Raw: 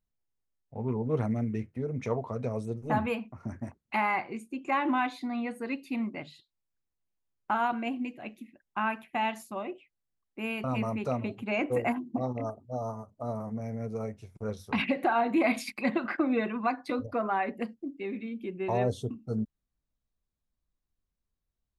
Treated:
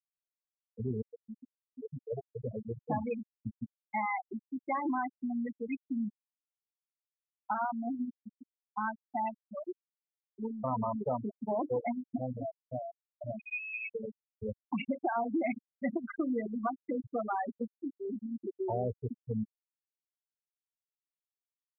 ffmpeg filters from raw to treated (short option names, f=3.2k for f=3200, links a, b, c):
-filter_complex "[0:a]asettb=1/sr,asplit=3[a][b][c];[a]atrim=end=10.394[d];[b]atrim=start=10.39:end=11.79,asetpts=PTS-STARTPTS,afade=t=in:d=0.004:c=qsin,afade=t=out:st=1.396:d=0.004:c=qsin,lowpass=f=990:t=q:w=4.8[e];[c]atrim=start=11.786[f];[d][e]acrossfade=d=0.004:c1=hsin:c2=qsin[g];[g][f]acrossfade=d=0.004:c1=qsin:c2=hsin,asettb=1/sr,asplit=3[h][i][j];[h]atrim=end=13.394[k];[i]atrim=start=13.39:end=13.95,asetpts=PTS-STARTPTS,afade=t=in:d=0.004:c=qsin,afade=t=out:st=0.556:d=0.004:c=qsin,lowpass=f=2.3k:t=q:w=0.5098,lowpass=f=2.3k:t=q:w=0.6013,lowpass=f=2.3k:t=q:w=0.9,lowpass=f=2.3k:t=q:w=2.563,afreqshift=-2700[l];[j]atrim=start=13.946[m];[k][l]acrossfade=d=0.004:c1=hsin:c2=qsin[n];[n][m]acrossfade=d=0.004:c1=qsin:c2=hsin,asplit=2[o][p];[o]atrim=end=1.02,asetpts=PTS-STARTPTS,afade=t=out:st=1.016:d=0.004:c=hsin:silence=0.141254[q];[p]atrim=start=1.02,asetpts=PTS-STARTPTS,afade=t=in:d=1.86:silence=0.141254[r];[q][r]concat=n=2:v=0:a=1,highshelf=f=7.8k:g=-6,afftfilt=real='re*gte(hypot(re,im),0.126)':imag='im*gte(hypot(re,im),0.126)':win_size=1024:overlap=0.75,acompressor=threshold=-31dB:ratio=2.5"